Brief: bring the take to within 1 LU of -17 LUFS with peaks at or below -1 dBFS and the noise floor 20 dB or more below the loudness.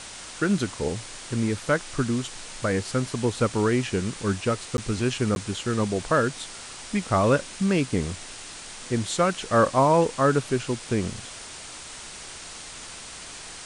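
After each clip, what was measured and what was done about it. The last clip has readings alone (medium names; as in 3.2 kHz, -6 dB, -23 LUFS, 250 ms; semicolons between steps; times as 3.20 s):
dropouts 2; longest dropout 11 ms; noise floor -41 dBFS; noise floor target -46 dBFS; loudness -25.5 LUFS; peak level -8.5 dBFS; loudness target -17.0 LUFS
-> interpolate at 4.77/5.35 s, 11 ms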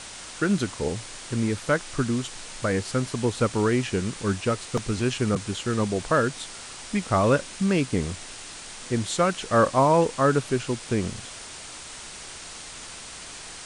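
dropouts 0; noise floor -41 dBFS; noise floor target -46 dBFS
-> noise reduction 6 dB, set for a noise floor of -41 dBFS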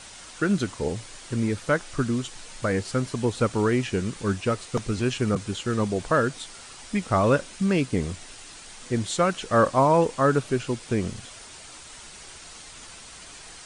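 noise floor -44 dBFS; noise floor target -46 dBFS
-> noise reduction 6 dB, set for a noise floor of -44 dBFS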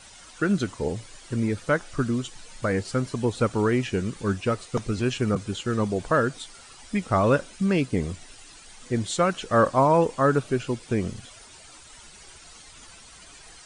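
noise floor -48 dBFS; loudness -25.5 LUFS; peak level -8.5 dBFS; loudness target -17.0 LUFS
-> trim +8.5 dB; peak limiter -1 dBFS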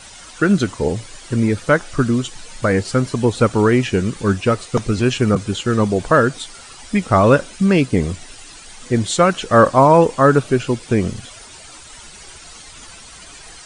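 loudness -17.0 LUFS; peak level -1.0 dBFS; noise floor -40 dBFS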